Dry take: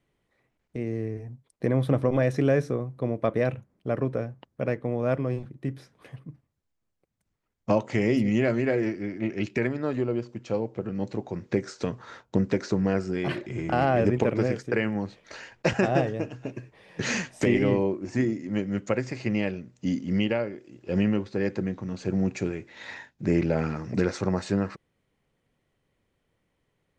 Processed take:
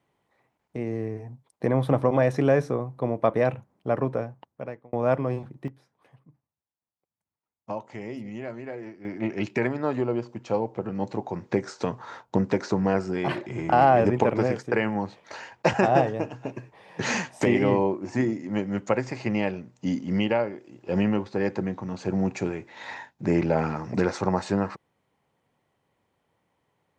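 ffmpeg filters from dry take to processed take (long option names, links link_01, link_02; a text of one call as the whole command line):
ffmpeg -i in.wav -filter_complex "[0:a]asplit=4[link_01][link_02][link_03][link_04];[link_01]atrim=end=4.93,asetpts=PTS-STARTPTS,afade=type=out:start_time=4.1:duration=0.83[link_05];[link_02]atrim=start=4.93:end=5.68,asetpts=PTS-STARTPTS,afade=type=in:duration=0.004:curve=hsin,afade=type=out:start_time=0.6:duration=0.15:curve=log:silence=0.211349[link_06];[link_03]atrim=start=5.68:end=9.05,asetpts=PTS-STARTPTS,volume=-13.5dB[link_07];[link_04]atrim=start=9.05,asetpts=PTS-STARTPTS,afade=type=in:duration=0.15:curve=log:silence=0.211349[link_08];[link_05][link_06][link_07][link_08]concat=n=4:v=0:a=1,highpass=83,equalizer=frequency=880:width=1.7:gain=10" out.wav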